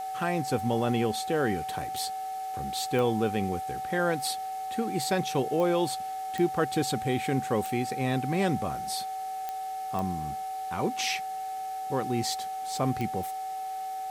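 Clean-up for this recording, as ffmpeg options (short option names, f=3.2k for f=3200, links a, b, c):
-af "adeclick=t=4,bandreject=f=434.2:t=h:w=4,bandreject=f=868.4:t=h:w=4,bandreject=f=1.3026k:t=h:w=4,bandreject=f=1.7368k:t=h:w=4,bandreject=f=2.171k:t=h:w=4,bandreject=f=760:w=30,afwtdn=0.0028"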